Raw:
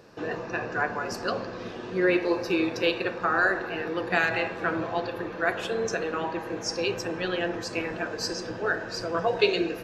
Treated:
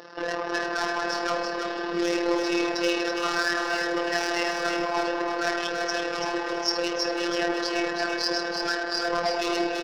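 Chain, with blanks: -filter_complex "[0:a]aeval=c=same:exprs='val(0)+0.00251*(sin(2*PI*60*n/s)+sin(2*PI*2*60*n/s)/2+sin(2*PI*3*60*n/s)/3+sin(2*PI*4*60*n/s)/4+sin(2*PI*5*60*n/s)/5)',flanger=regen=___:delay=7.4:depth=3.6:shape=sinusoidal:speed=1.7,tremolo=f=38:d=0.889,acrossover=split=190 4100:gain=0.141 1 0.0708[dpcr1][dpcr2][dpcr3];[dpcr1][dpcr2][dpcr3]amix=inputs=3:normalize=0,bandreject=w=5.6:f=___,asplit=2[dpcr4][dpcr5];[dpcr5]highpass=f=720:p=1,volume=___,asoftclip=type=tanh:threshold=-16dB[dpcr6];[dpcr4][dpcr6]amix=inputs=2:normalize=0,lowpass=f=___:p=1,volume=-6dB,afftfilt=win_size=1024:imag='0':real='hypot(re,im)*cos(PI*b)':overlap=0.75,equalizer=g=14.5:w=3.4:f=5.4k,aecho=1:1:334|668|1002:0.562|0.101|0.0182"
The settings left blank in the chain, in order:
-53, 2.4k, 30dB, 3.6k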